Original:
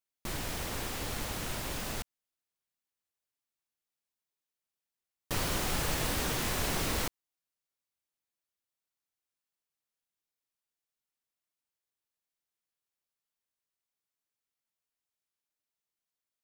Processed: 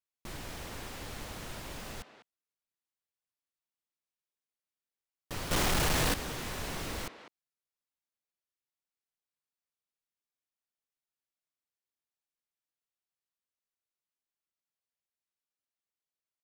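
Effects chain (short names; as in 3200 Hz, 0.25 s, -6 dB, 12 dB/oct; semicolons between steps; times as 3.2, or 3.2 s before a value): speakerphone echo 0.2 s, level -10 dB; 5.51–6.14 sample leveller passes 5; high shelf 8400 Hz -5.5 dB; gain -5.5 dB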